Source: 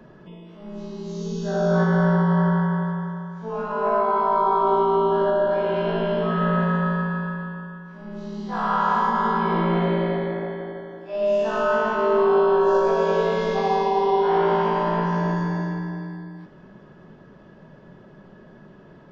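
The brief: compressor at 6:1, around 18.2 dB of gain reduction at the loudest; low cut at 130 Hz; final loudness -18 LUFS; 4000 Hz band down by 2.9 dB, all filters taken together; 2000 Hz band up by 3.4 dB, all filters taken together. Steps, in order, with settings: HPF 130 Hz; bell 2000 Hz +6 dB; bell 4000 Hz -7 dB; compressor 6:1, threshold -36 dBFS; gain +20.5 dB

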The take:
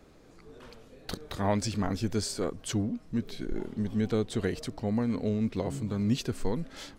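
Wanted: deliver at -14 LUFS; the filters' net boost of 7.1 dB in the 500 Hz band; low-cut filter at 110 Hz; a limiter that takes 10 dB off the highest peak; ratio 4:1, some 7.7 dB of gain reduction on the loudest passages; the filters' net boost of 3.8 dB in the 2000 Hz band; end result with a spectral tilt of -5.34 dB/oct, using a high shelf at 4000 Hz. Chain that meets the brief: HPF 110 Hz; bell 500 Hz +8.5 dB; bell 2000 Hz +5 dB; high shelf 4000 Hz -4 dB; compressor 4:1, threshold -27 dBFS; gain +23 dB; limiter -3 dBFS

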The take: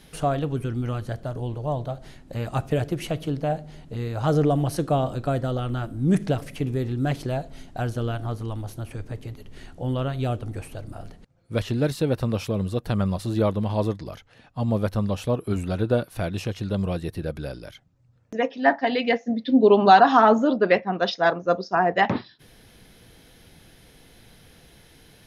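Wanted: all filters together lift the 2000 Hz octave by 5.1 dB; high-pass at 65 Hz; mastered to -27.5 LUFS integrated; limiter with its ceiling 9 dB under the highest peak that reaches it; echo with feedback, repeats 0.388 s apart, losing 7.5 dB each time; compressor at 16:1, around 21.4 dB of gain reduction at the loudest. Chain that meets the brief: HPF 65 Hz; bell 2000 Hz +6.5 dB; compressor 16:1, threshold -30 dBFS; limiter -26.5 dBFS; feedback echo 0.388 s, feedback 42%, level -7.5 dB; gain +9 dB

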